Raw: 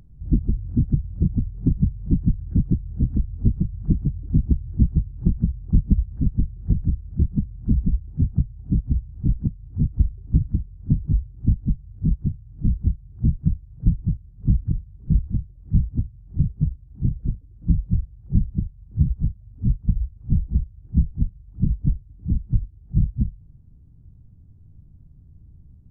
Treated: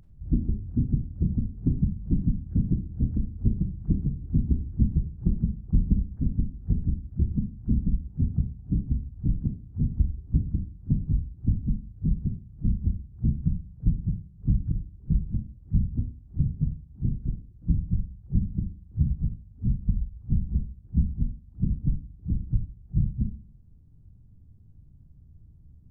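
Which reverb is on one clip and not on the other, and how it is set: Schroeder reverb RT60 0.46 s, combs from 29 ms, DRR 6 dB; trim -5 dB

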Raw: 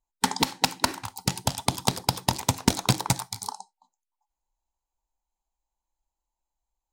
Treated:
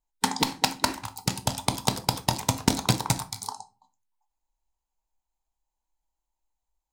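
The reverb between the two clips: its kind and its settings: simulated room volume 220 m³, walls furnished, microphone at 0.51 m; trim -1 dB

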